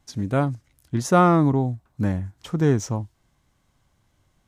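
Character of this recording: noise floor -68 dBFS; spectral tilt -6.5 dB/oct

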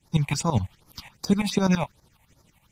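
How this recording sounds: tremolo saw up 12 Hz, depth 85%; phasing stages 6, 2.6 Hz, lowest notch 350–2800 Hz; AAC

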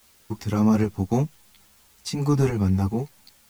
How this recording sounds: tremolo saw up 2.4 Hz, depth 50%; a quantiser's noise floor 10-bit, dither triangular; a shimmering, thickened sound

